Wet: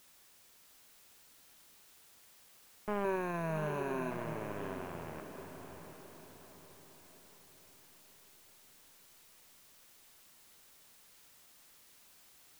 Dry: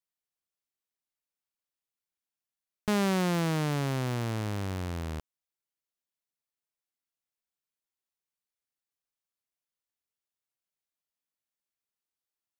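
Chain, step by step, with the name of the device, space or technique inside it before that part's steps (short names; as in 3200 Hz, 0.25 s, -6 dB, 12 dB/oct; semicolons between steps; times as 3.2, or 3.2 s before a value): army field radio (BPF 370–3000 Hz; CVSD 16 kbps; white noise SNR 16 dB); 3.04–4.11 ripple EQ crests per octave 1.5, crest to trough 13 dB; diffused feedback echo 0.719 s, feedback 45%, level -7 dB; gain +1 dB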